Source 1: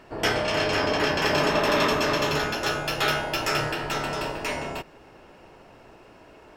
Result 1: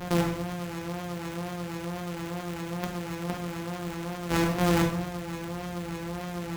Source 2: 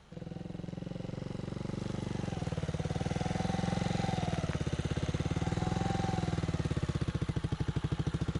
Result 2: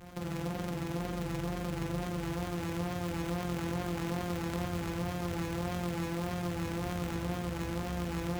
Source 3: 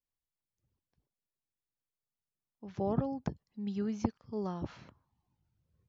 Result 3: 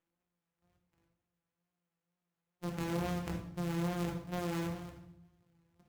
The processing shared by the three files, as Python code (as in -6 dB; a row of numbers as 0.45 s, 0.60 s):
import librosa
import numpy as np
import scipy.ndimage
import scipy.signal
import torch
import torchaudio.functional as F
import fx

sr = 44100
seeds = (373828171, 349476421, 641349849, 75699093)

y = np.r_[np.sort(x[:len(x) // 256 * 256].reshape(-1, 256), axis=1).ravel(), x[len(x) // 256 * 256:]]
y = fx.over_compress(y, sr, threshold_db=-36.0, ratio=-1.0)
y = fx.wow_flutter(y, sr, seeds[0], rate_hz=2.1, depth_cents=57.0)
y = fx.hpss(y, sr, part='harmonic', gain_db=6)
y = fx.level_steps(y, sr, step_db=13)
y = scipy.signal.sosfilt(scipy.signal.butter(2, 50.0, 'highpass', fs=sr, output='sos'), y)
y = fx.high_shelf(y, sr, hz=3700.0, db=11.0)
y = fx.room_shoebox(y, sr, seeds[1], volume_m3=170.0, walls='mixed', distance_m=0.93)
y = fx.running_max(y, sr, window=9)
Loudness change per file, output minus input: -7.0 LU, -0.5 LU, -0.5 LU